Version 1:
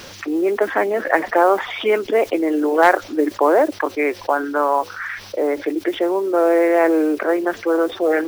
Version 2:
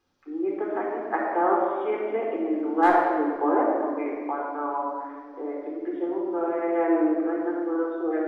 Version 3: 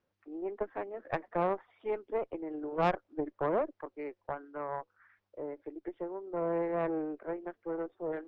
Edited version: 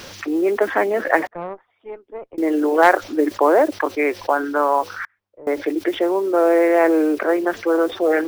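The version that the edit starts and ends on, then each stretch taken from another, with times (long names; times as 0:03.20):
1
0:01.27–0:02.38: punch in from 3
0:05.05–0:05.47: punch in from 3
not used: 2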